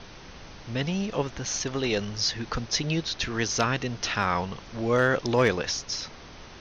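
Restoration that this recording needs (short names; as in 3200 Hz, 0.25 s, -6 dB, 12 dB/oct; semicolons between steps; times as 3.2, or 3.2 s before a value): clip repair -11.5 dBFS; noise print and reduce 27 dB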